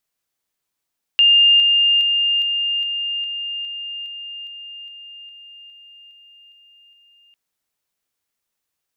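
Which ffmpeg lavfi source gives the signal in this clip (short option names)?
-f lavfi -i "aevalsrc='pow(10,(-9-3*floor(t/0.41))/20)*sin(2*PI*2810*t)':d=6.15:s=44100"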